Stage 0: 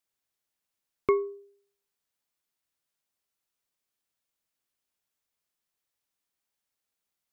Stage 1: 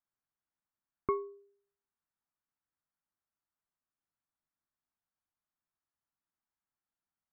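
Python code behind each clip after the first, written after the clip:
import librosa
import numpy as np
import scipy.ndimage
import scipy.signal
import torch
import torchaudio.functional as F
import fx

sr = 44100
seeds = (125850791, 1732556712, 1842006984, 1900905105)

y = scipy.signal.sosfilt(scipy.signal.butter(4, 1600.0, 'lowpass', fs=sr, output='sos'), x)
y = fx.peak_eq(y, sr, hz=480.0, db=-12.5, octaves=0.63)
y = y * 10.0 ** (-2.0 / 20.0)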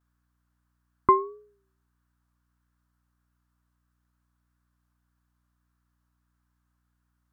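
y = fx.vibrato(x, sr, rate_hz=1.6, depth_cents=81.0)
y = fx.add_hum(y, sr, base_hz=60, snr_db=34)
y = fx.band_shelf(y, sr, hz=1300.0, db=9.0, octaves=1.0)
y = y * 10.0 ** (7.5 / 20.0)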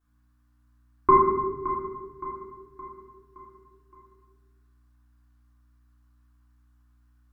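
y = fx.echo_feedback(x, sr, ms=568, feedback_pct=48, wet_db=-12)
y = fx.room_shoebox(y, sr, seeds[0], volume_m3=690.0, walls='mixed', distance_m=3.4)
y = y * 10.0 ** (-3.5 / 20.0)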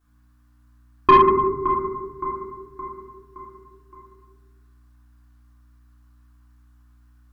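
y = 10.0 ** (-12.5 / 20.0) * np.tanh(x / 10.0 ** (-12.5 / 20.0))
y = y * 10.0 ** (7.5 / 20.0)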